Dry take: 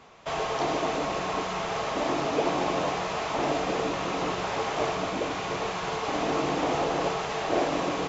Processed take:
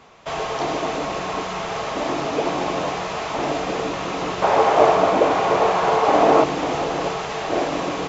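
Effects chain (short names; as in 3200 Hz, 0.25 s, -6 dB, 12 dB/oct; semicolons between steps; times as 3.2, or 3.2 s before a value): 4.42–6.44 bell 660 Hz +12 dB 2.4 oct; gain +3.5 dB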